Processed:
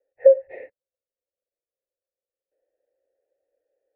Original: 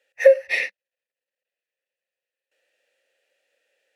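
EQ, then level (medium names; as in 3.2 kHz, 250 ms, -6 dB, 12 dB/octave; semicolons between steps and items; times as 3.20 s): low-pass 1.3 kHz 24 dB/octave; bass shelf 490 Hz +12 dB; static phaser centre 470 Hz, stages 4; -5.5 dB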